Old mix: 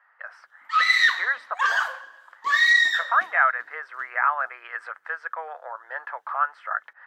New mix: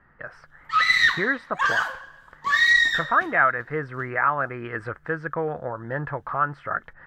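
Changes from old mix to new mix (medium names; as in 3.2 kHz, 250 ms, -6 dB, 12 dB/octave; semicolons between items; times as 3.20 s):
speech: remove high-pass 710 Hz 24 dB/octave; master: remove high-pass 420 Hz 12 dB/octave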